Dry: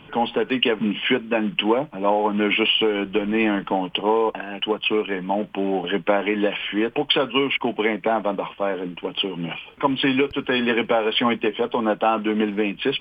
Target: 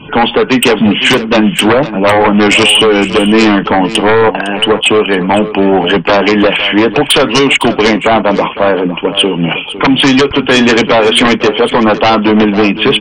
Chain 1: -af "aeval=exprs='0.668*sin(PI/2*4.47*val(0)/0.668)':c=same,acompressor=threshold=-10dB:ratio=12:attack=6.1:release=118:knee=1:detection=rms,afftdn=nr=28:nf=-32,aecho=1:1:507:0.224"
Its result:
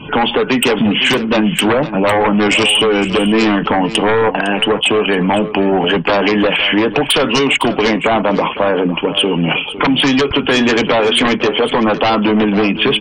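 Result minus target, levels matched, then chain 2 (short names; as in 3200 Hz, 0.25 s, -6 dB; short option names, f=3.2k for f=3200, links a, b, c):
compressor: peak gain reduction +5.5 dB
-af "aeval=exprs='0.668*sin(PI/2*4.47*val(0)/0.668)':c=same,afftdn=nr=28:nf=-32,aecho=1:1:507:0.224"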